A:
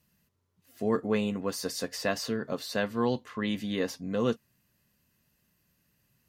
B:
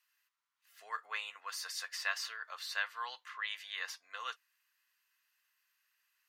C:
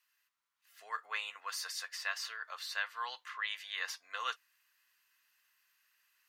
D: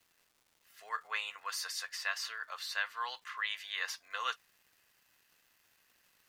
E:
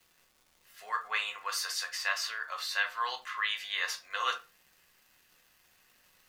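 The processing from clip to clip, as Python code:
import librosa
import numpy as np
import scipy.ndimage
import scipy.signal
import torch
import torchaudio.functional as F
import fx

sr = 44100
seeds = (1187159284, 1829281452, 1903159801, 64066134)

y1 = scipy.signal.sosfilt(scipy.signal.butter(4, 1200.0, 'highpass', fs=sr, output='sos'), x)
y1 = fx.high_shelf(y1, sr, hz=4200.0, db=-10.0)
y1 = y1 * librosa.db_to_amplitude(2.0)
y2 = fx.rider(y1, sr, range_db=10, speed_s=0.5)
y2 = y2 * librosa.db_to_amplitude(1.0)
y3 = fx.dmg_crackle(y2, sr, seeds[0], per_s=390.0, level_db=-58.0)
y3 = y3 * librosa.db_to_amplitude(1.5)
y4 = fx.room_shoebox(y3, sr, seeds[1], volume_m3=140.0, walls='furnished', distance_m=1.0)
y4 = y4 * librosa.db_to_amplitude(3.5)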